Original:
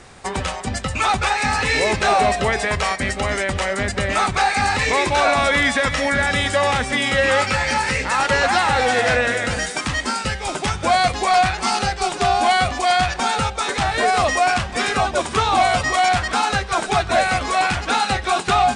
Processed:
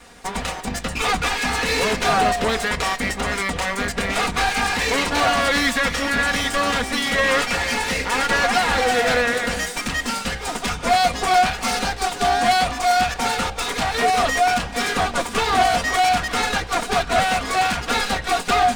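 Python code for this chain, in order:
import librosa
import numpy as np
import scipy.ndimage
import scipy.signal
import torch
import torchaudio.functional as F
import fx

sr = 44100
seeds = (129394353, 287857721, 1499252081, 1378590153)

y = fx.lower_of_two(x, sr, delay_ms=4.2)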